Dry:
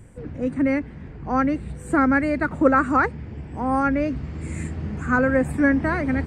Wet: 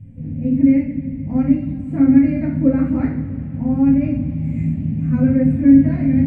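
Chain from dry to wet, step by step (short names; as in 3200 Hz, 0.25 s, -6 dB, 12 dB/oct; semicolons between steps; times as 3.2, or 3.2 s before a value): EQ curve 120 Hz 0 dB, 250 Hz +10 dB, 360 Hz -14 dB, 630 Hz -11 dB, 1300 Hz -28 dB, 2300 Hz -9 dB, 9000 Hz -30 dB; two-slope reverb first 0.45 s, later 3.1 s, from -18 dB, DRR -6.5 dB; gain -2.5 dB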